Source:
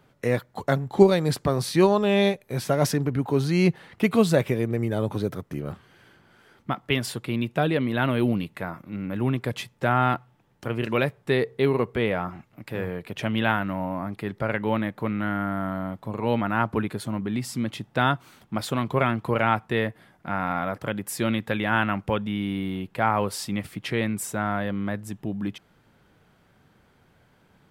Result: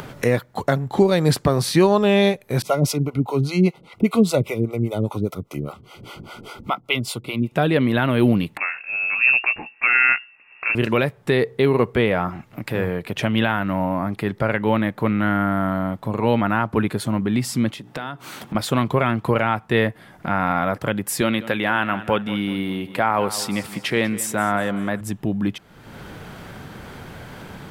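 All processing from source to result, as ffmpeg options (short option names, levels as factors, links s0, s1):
-filter_complex "[0:a]asettb=1/sr,asplit=3[s0][s1][s2];[s0]atrim=end=2.624[s3];[s1]atrim=start=2.62:end=7.52,asetpts=PTS-STARTPTS,afade=t=in:d=0.004:c=qsin,afade=t=out:st=4.896:d=0.004:c=qsin,acrossover=split=450[s4][s5];[s4]aeval=exprs='val(0)*(1-1/2+1/2*cos(2*PI*5*n/s))':c=same[s6];[s5]aeval=exprs='val(0)*(1-1/2-1/2*cos(2*PI*5*n/s))':c=same[s7];[s6][s7]amix=inputs=2:normalize=0,asuperstop=centerf=1700:order=20:qfactor=3.4[s8];[s2]atrim=start=7.516[s9];[s3][s8]acrossfade=d=0.004:c1=hsin:c2=qsin[s10];[s10][s9]acrossfade=d=0.004:c1=qsin:c2=hsin,asettb=1/sr,asplit=3[s11][s12][s13];[s11]atrim=end=8.574[s14];[s12]atrim=start=8.57:end=10.75,asetpts=PTS-STARTPTS,afade=t=in:d=0.004:c=qsin,afade=t=out:st=2.176:d=0.004:c=qsin,aeval=exprs='(tanh(6.31*val(0)+0.4)-tanh(0.4))/6.31':c=same,asplit=2[s15][s16];[s16]adelay=16,volume=0.398[s17];[s15][s17]amix=inputs=2:normalize=0,atrim=end_sample=96138,lowpass=f=2400:t=q:w=0.5098,lowpass=f=2400:t=q:w=0.6013,lowpass=f=2400:t=q:w=0.9,lowpass=f=2400:t=q:w=2.563,afreqshift=-2800[s18];[s13]atrim=start=10.746[s19];[s14][s18]acrossfade=d=0.004:c1=hsin:c2=qsin[s20];[s20][s19]acrossfade=d=0.004:c1=qsin:c2=hsin,asettb=1/sr,asplit=3[s21][s22][s23];[s21]atrim=end=17.724[s24];[s22]atrim=start=17.72:end=18.55,asetpts=PTS-STARTPTS,afade=t=in:d=0.004:c=qsin,afade=t=out:st=0.826:d=0.004:c=qsin,highpass=140,acompressor=threshold=0.01:ratio=3:attack=3.2:release=140:knee=1:detection=peak,bandreject=f=60:t=h:w=6,bandreject=f=120:t=h:w=6,bandreject=f=180:t=h:w=6,bandreject=f=240:t=h:w=6,bandreject=f=300:t=h:w=6,bandreject=f=360:t=h:w=6,bandreject=f=420:t=h:w=6,bandreject=f=480:t=h:w=6[s25];[s23]atrim=start=18.546[s26];[s24][s25]acrossfade=d=0.004:c1=hsin:c2=qsin[s27];[s27][s26]acrossfade=d=0.004:c1=qsin:c2=hsin,asettb=1/sr,asplit=3[s28][s29][s30];[s28]atrim=end=21.214[s31];[s29]atrim=start=21.21:end=25.01,asetpts=PTS-STARTPTS,afade=t=in:d=0.004:c=qsin,afade=t=out:st=3.796:d=0.004:c=qsin,highpass=f=240:p=1,aecho=1:1:193|386|579|772:0.15|0.0628|0.0264|0.0111,atrim=end_sample=167580[s32];[s30]atrim=start=25.006[s33];[s31][s32]acrossfade=d=0.004:c1=hsin:c2=qsin[s34];[s34][s33]acrossfade=d=0.004:c1=qsin:c2=hsin,alimiter=limit=0.224:level=0:latency=1:release=243,acompressor=mode=upward:threshold=0.0316:ratio=2.5,volume=2.24"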